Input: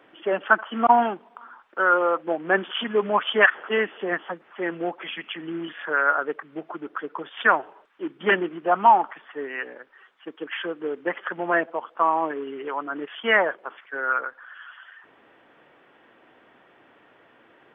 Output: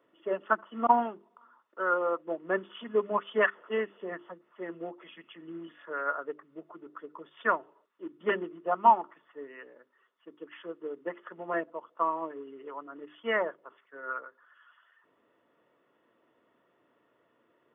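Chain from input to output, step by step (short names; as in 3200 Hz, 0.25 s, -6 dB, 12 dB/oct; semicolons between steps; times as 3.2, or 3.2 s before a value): bell 2300 Hz -7 dB 1.4 oct; notches 50/100/150/200/250/300/350/400 Hz; notch comb 790 Hz; upward expander 1.5:1, over -33 dBFS; gain -1.5 dB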